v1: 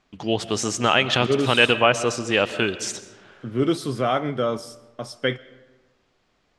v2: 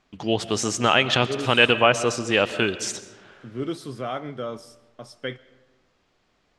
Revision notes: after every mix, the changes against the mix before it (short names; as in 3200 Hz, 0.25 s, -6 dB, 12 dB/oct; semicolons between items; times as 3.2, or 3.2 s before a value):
second voice -8.0 dB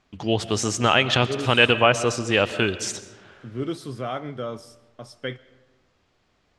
master: add bell 88 Hz +7 dB 0.9 oct